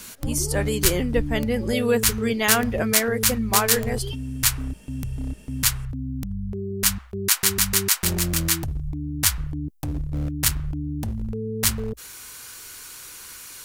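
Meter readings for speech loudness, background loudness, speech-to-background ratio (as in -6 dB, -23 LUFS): -25.0 LUFS, -24.0 LUFS, -1.0 dB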